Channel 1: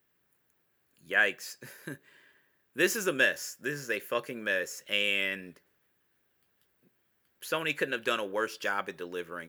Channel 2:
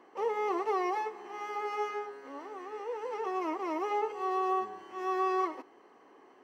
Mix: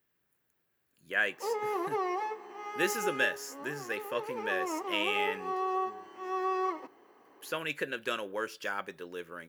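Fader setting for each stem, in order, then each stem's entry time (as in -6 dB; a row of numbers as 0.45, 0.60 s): -4.0, -1.5 dB; 0.00, 1.25 s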